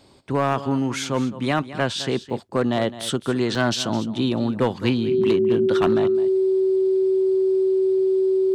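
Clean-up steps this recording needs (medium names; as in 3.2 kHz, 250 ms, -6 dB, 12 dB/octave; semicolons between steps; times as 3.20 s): clip repair -12 dBFS; band-stop 380 Hz, Q 30; interpolate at 2.30/3.55 s, 2.1 ms; inverse comb 211 ms -15 dB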